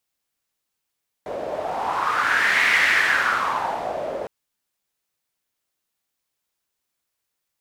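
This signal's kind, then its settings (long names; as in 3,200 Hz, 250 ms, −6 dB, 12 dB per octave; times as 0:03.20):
wind from filtered noise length 3.01 s, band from 560 Hz, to 2,000 Hz, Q 4.9, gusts 1, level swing 11 dB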